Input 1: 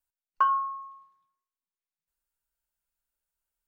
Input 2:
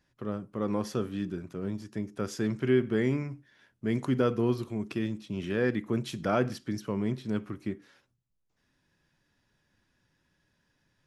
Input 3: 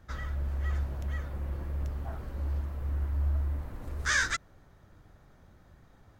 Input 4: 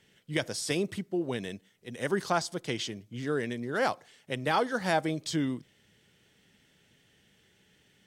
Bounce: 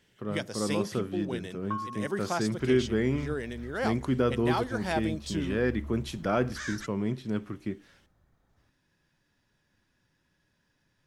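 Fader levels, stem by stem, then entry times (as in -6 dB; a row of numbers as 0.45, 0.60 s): -11.5, 0.0, -11.5, -3.5 dB; 1.30, 0.00, 2.50, 0.00 s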